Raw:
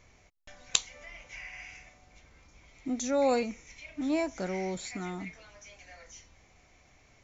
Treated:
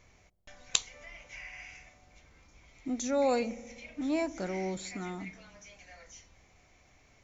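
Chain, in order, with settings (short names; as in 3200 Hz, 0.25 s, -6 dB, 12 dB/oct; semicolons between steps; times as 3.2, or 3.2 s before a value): dark delay 63 ms, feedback 77%, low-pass 530 Hz, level -17 dB; gain -1.5 dB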